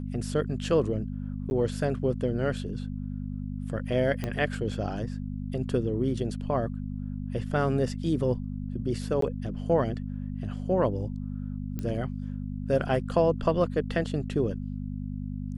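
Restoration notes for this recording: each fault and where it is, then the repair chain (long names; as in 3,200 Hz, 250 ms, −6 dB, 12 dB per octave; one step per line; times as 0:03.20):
mains hum 50 Hz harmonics 5 −34 dBFS
0:01.50–0:01.51: drop-out 11 ms
0:04.24: click −17 dBFS
0:09.21–0:09.22: drop-out 13 ms
0:11.79: click −21 dBFS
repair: click removal
hum removal 50 Hz, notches 5
repair the gap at 0:01.50, 11 ms
repair the gap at 0:09.21, 13 ms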